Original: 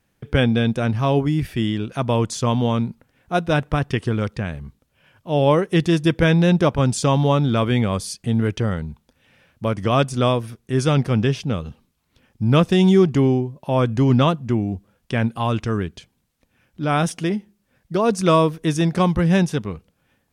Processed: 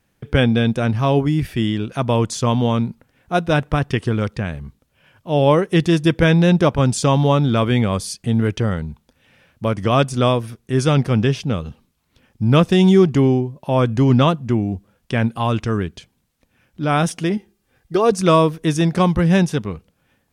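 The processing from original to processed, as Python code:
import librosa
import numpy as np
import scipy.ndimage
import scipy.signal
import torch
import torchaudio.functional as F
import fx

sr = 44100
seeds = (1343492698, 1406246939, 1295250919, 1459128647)

y = fx.comb(x, sr, ms=2.5, depth=0.52, at=(17.37, 18.12))
y = y * 10.0 ** (2.0 / 20.0)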